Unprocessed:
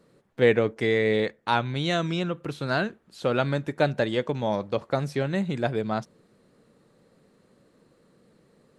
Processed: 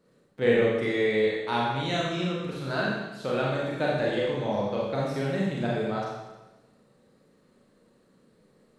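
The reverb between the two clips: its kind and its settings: Schroeder reverb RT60 1.1 s, combs from 30 ms, DRR -5 dB; gain -7.5 dB

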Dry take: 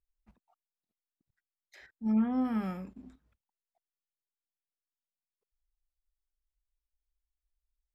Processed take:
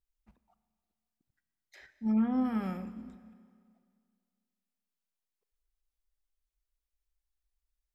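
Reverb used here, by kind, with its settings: Schroeder reverb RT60 2.1 s, combs from 28 ms, DRR 13 dB

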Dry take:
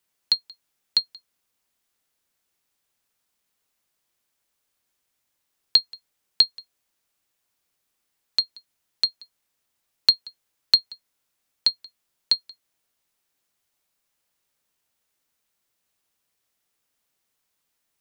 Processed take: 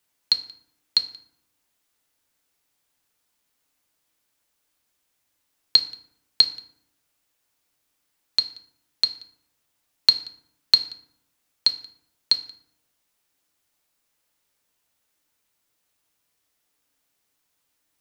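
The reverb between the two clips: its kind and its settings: FDN reverb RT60 0.72 s, low-frequency decay 1.35×, high-frequency decay 0.6×, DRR 7.5 dB; gain +2 dB

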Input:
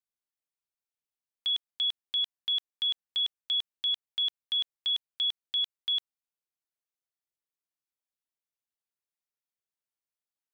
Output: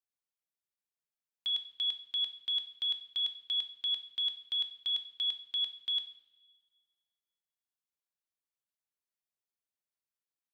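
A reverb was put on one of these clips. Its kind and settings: two-slope reverb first 0.62 s, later 1.8 s, from -16 dB, DRR 7 dB; gain -5 dB

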